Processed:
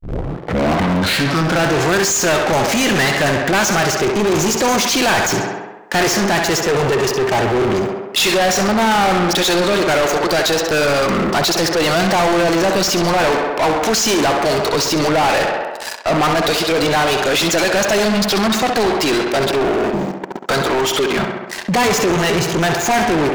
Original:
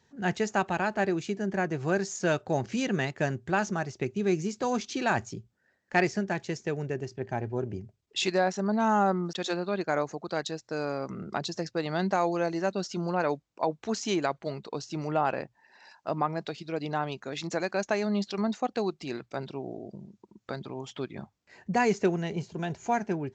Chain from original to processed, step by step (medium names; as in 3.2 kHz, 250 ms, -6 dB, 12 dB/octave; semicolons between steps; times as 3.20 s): tape start-up on the opening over 1.78 s; waveshaping leveller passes 5; treble shelf 6.9 kHz +10.5 dB; tape echo 66 ms, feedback 68%, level -10 dB, low-pass 3.6 kHz; overdrive pedal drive 30 dB, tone 5.9 kHz, clips at -5 dBFS; trim -4 dB